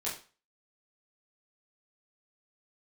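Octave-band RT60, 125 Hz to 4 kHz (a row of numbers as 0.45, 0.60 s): 0.35, 0.35, 0.35, 0.35, 0.35, 0.35 s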